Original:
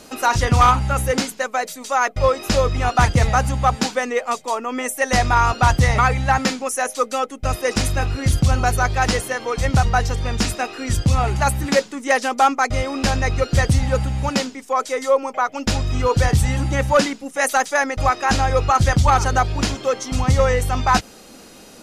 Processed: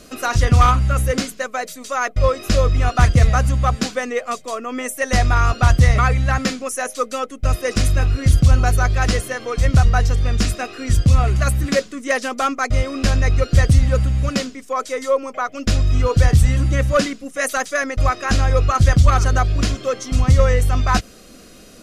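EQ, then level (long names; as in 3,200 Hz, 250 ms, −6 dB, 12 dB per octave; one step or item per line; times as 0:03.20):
Butterworth band-reject 870 Hz, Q 3.7
low-shelf EQ 98 Hz +10.5 dB
−1.5 dB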